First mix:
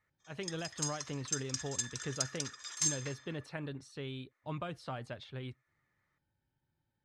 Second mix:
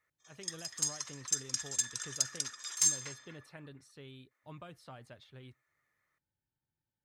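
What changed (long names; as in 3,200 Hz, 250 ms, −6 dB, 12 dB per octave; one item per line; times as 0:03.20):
speech −9.5 dB
master: remove high-frequency loss of the air 57 metres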